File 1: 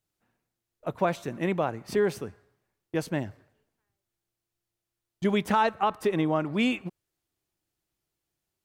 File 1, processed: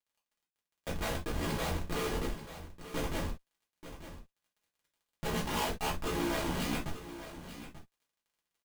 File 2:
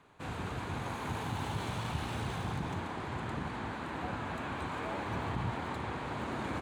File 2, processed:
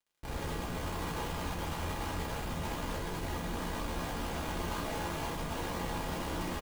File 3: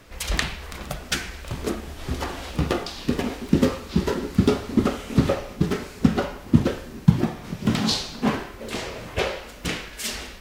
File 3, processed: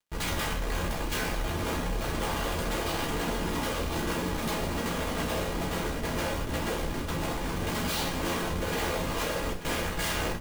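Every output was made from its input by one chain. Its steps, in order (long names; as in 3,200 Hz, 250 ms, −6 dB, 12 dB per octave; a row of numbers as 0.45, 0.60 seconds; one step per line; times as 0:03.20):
downward expander −36 dBFS
ring modulation 31 Hz
low-shelf EQ 310 Hz −8.5 dB
in parallel at −2 dB: downward compressor 20 to 1, threshold −38 dBFS
on the sum: wrap-around overflow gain 20 dB
high-shelf EQ 2,300 Hz −9 dB
comparator with hysteresis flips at −41.5 dBFS
surface crackle 37 per second −63 dBFS
on a send: single-tap delay 887 ms −12.5 dB
on the sum: reverb whose tail is shaped and stops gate 90 ms falling, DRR −4 dB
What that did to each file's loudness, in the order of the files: −8.0, +0.5, −5.5 LU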